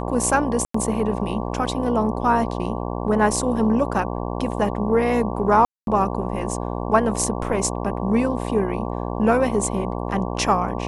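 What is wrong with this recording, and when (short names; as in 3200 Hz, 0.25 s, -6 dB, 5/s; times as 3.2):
buzz 60 Hz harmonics 19 -27 dBFS
0.65–0.74 gap 94 ms
5.65–5.87 gap 0.222 s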